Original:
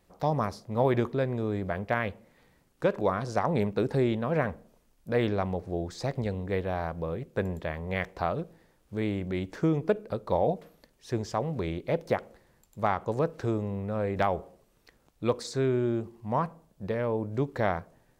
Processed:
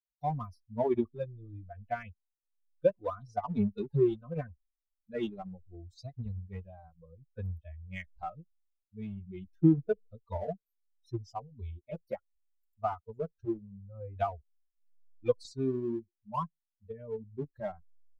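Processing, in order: expander on every frequency bin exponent 3; low-pass 2.4 kHz 6 dB/octave; peaking EQ 1.7 kHz -12 dB 0.43 oct; in parallel at -9 dB: hysteresis with a dead band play -32.5 dBFS; on the sum: endless flanger 3.3 ms -0.73 Hz; trim +4 dB

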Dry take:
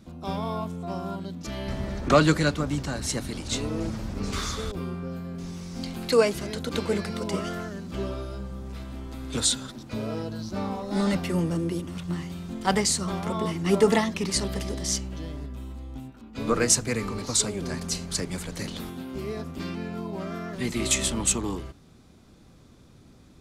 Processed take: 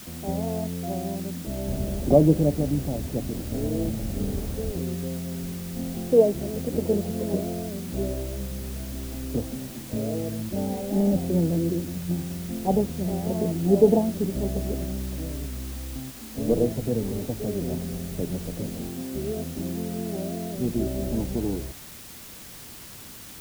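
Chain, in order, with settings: steep low-pass 750 Hz 48 dB/octave; in parallel at -7.5 dB: word length cut 6-bit, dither triangular

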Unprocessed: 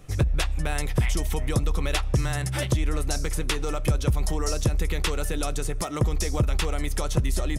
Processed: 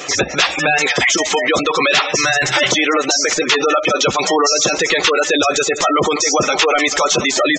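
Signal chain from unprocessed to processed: high-pass 270 Hz 12 dB/octave; treble shelf 3.9 kHz +9.5 dB; thinning echo 203 ms, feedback 53%, high-pass 510 Hz, level -20 dB; wow and flutter 21 cents; overdrive pedal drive 32 dB, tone 5.7 kHz, clips at -6.5 dBFS; in parallel at -9.5 dB: saturation -22 dBFS, distortion -10 dB; on the sum: spectral gate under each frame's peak -15 dB strong; resampled via 16 kHz; trim +2 dB

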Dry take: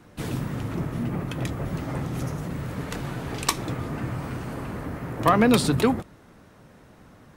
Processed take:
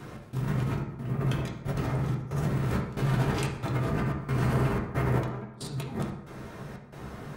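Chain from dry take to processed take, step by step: compressor with a negative ratio -35 dBFS, ratio -1; trance gate "xx..xxxx" 182 bpm -24 dB; reverberation RT60 1.0 s, pre-delay 4 ms, DRR -0.5 dB

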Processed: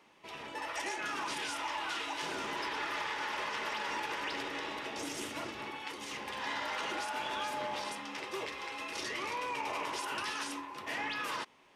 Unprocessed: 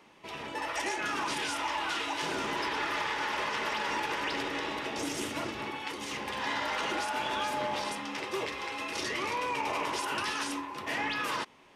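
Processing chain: bass shelf 330 Hz -4.5 dB; trim -4 dB

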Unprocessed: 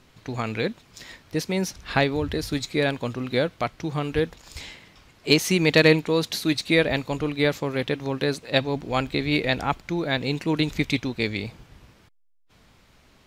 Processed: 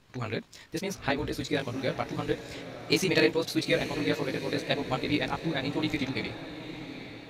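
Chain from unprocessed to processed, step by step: granular stretch 0.55×, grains 41 ms; chorus 0.82 Hz, delay 15.5 ms, depth 3.1 ms; echo that smears into a reverb 863 ms, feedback 49%, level -11 dB; trim -1.5 dB

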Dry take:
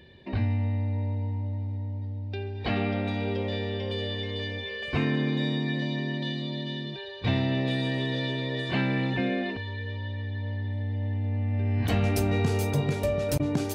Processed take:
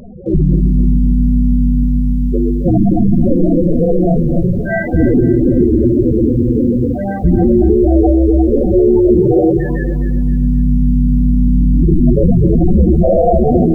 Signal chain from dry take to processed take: cycle switcher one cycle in 2, inverted; mains buzz 50 Hz, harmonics 32, -57 dBFS -1 dB/octave; low-pass 1.4 kHz 12 dB/octave; spectral gate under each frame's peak -25 dB strong; reverberation RT60 0.45 s, pre-delay 6 ms, DRR 3.5 dB; loudest bins only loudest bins 8; bass shelf 63 Hz -11.5 dB; band-stop 920 Hz, Q 8.5; 7.20–8.77 s: bass shelf 230 Hz +2.5 dB; loudness maximiser +26.5 dB; bit-crushed delay 262 ms, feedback 35%, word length 7-bit, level -11.5 dB; trim -2.5 dB

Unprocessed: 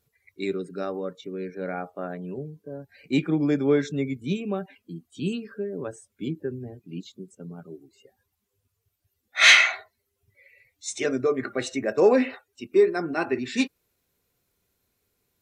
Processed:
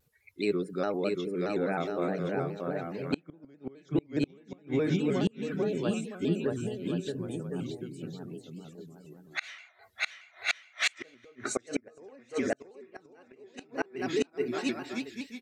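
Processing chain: bouncing-ball echo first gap 630 ms, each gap 0.7×, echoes 5; inverted gate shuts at -16 dBFS, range -33 dB; vibrato with a chosen wave square 4.8 Hz, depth 100 cents

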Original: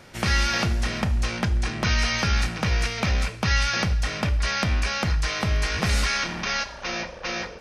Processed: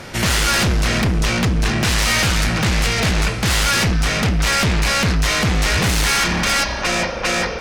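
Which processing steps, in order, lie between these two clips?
reverberation RT60 4.4 s, pre-delay 115 ms, DRR 16 dB; in parallel at -7 dB: sine folder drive 15 dB, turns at -9.5 dBFS

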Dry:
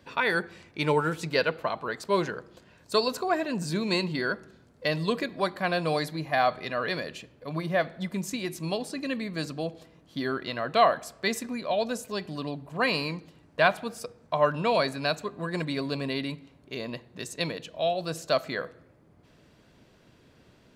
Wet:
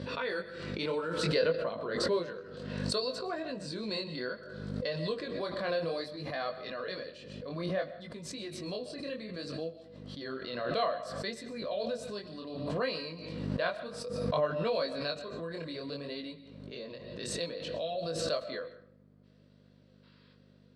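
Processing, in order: 1.41–2.17 s: bass shelf 410 Hz +9.5 dB; 20.03–20.34 s: time-frequency box 880–5400 Hz +10 dB; chorus 0.61 Hz, delay 18 ms, depth 6.7 ms; hum 50 Hz, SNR 14 dB; cabinet simulation 160–8300 Hz, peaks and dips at 510 Hz +9 dB, 840 Hz -8 dB, 2.3 kHz -4 dB, 4.2 kHz +6 dB, 6.8 kHz -10 dB; reverberation RT60 0.40 s, pre-delay 90 ms, DRR 14.5 dB; swell ahead of each attack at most 35 dB/s; trim -8 dB

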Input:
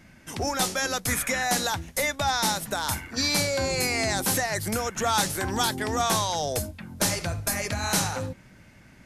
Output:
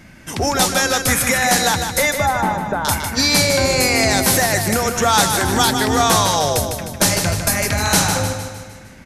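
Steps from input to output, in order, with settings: 2.12–2.85 s: Gaussian low-pass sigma 4.4 samples; feedback delay 153 ms, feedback 51%, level -7 dB; trim +9 dB

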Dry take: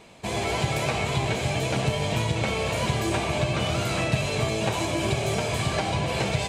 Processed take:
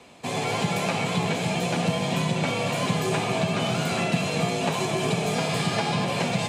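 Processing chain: 5.34–6.04 s: mains buzz 400 Hz, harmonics 13, -36 dBFS -1 dB/octave; echo whose repeats swap between lows and highs 231 ms, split 1.8 kHz, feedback 78%, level -13 dB; frequency shift +44 Hz

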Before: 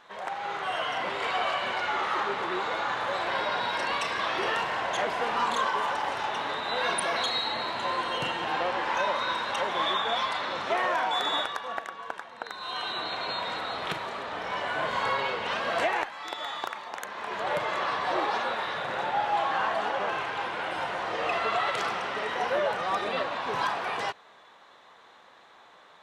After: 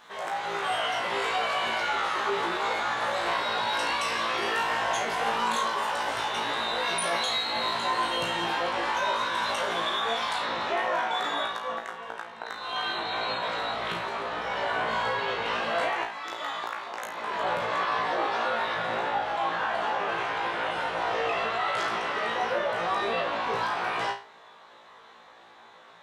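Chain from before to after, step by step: treble shelf 6.6 kHz +11 dB, from 10.42 s -3 dB; peak limiter -22 dBFS, peak gain reduction 10.5 dB; flutter echo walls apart 3 m, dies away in 0.33 s

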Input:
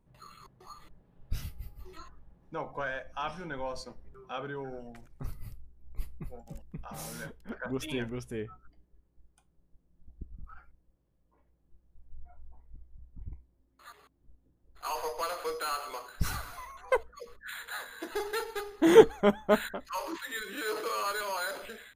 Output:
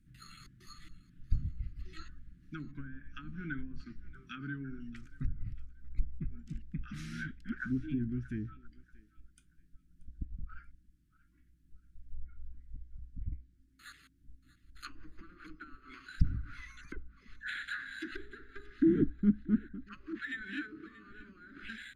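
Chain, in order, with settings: low-pass that closes with the level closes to 440 Hz, closed at -31 dBFS; elliptic band-stop 300–1500 Hz, stop band 40 dB; thinning echo 632 ms, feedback 31%, high-pass 710 Hz, level -18 dB; trim +4 dB

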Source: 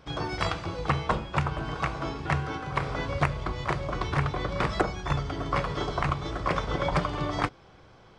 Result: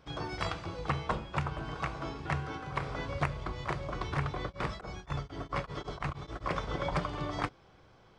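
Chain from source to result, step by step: 4.48–6.48 s: tremolo of two beating tones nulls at 3.2 Hz -> 8.5 Hz; trim -6 dB

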